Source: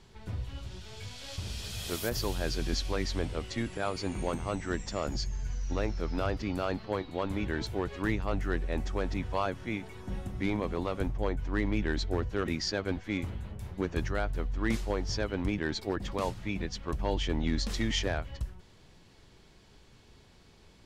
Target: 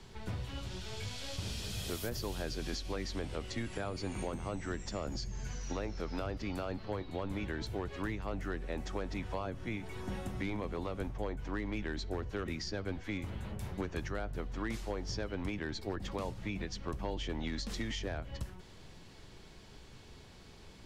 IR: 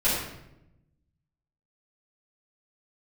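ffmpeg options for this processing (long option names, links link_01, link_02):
-filter_complex "[0:a]acrossover=split=120|510[link_01][link_02][link_03];[link_01]acompressor=threshold=-46dB:ratio=4[link_04];[link_02]acompressor=threshold=-44dB:ratio=4[link_05];[link_03]acompressor=threshold=-46dB:ratio=4[link_06];[link_04][link_05][link_06]amix=inputs=3:normalize=0,asplit=2[link_07][link_08];[1:a]atrim=start_sample=2205,asetrate=48510,aresample=44100[link_09];[link_08][link_09]afir=irnorm=-1:irlink=0,volume=-33.5dB[link_10];[link_07][link_10]amix=inputs=2:normalize=0,volume=3.5dB"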